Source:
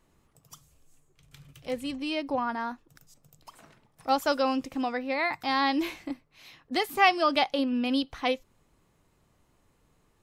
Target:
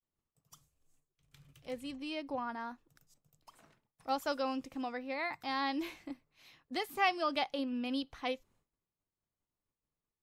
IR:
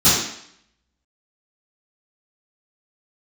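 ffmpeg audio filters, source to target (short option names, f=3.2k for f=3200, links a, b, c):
-af "agate=range=-33dB:threshold=-54dB:ratio=3:detection=peak,volume=-9dB"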